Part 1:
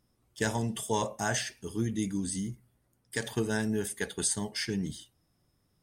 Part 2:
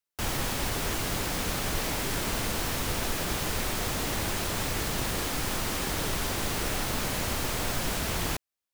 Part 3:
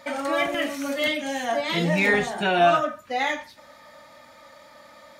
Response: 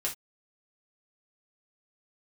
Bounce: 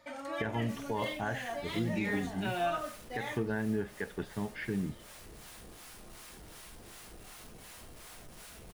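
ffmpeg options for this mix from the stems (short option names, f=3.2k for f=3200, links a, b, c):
-filter_complex "[0:a]lowpass=f=2.4k:w=0.5412,lowpass=f=2.4k:w=1.3066,volume=-1dB,asplit=2[a][b];[1:a]equalizer=f=9.8k:w=3:g=6,acrossover=split=700[c][d];[c]aeval=exprs='val(0)*(1-0.7/2+0.7/2*cos(2*PI*2.7*n/s))':c=same[e];[d]aeval=exprs='val(0)*(1-0.7/2-0.7/2*cos(2*PI*2.7*n/s))':c=same[f];[e][f]amix=inputs=2:normalize=0,asoftclip=type=tanh:threshold=-32dB,adelay=500,volume=-19dB,asplit=2[g][h];[h]volume=-4dB[i];[2:a]volume=-14dB[j];[b]apad=whole_len=407053[k];[g][k]sidechaincompress=threshold=-39dB:ratio=8:attack=16:release=479[l];[3:a]atrim=start_sample=2205[m];[i][m]afir=irnorm=-1:irlink=0[n];[a][l][j][n]amix=inputs=4:normalize=0,alimiter=limit=-22.5dB:level=0:latency=1:release=153"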